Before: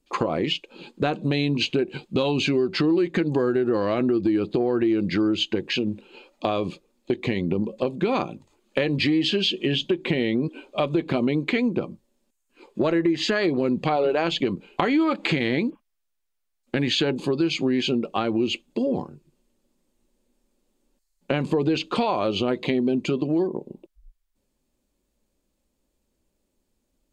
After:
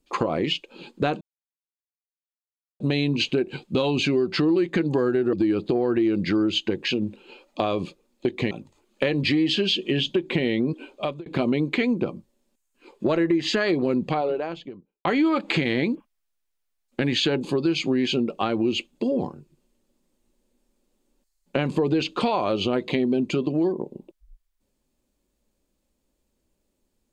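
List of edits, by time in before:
0:01.21: splice in silence 1.59 s
0:03.74–0:04.18: remove
0:07.36–0:08.26: remove
0:10.57–0:11.01: fade out equal-power
0:13.59–0:14.80: fade out and dull

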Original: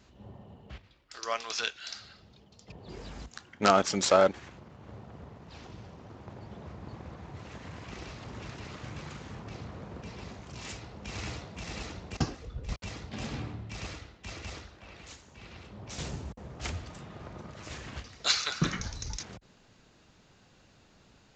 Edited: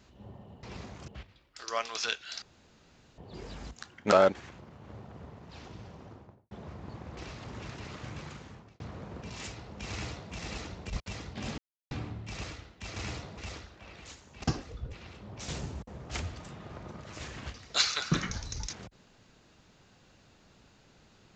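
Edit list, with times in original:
0:01.97–0:02.73: fill with room tone
0:03.67–0:04.11: remove
0:06.00–0:06.50: fade out and dull
0:07.16–0:07.97: remove
0:08.80–0:09.60: fade out equal-power
0:10.10–0:10.55: move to 0:00.63
0:11.15–0:11.57: duplicate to 0:14.39
0:12.15–0:12.66: move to 0:15.43
0:13.34: splice in silence 0.33 s

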